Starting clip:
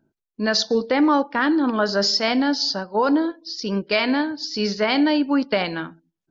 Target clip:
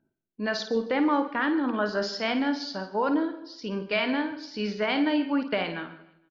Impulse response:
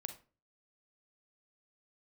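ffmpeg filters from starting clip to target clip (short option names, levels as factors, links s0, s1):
-filter_complex "[0:a]highshelf=f=3800:t=q:w=1.5:g=-7,aecho=1:1:155|310|465:0.0708|0.0333|0.0156,asplit=2[s0][s1];[1:a]atrim=start_sample=2205,asetrate=24696,aresample=44100,adelay=53[s2];[s1][s2]afir=irnorm=-1:irlink=0,volume=0.376[s3];[s0][s3]amix=inputs=2:normalize=0,volume=0.447"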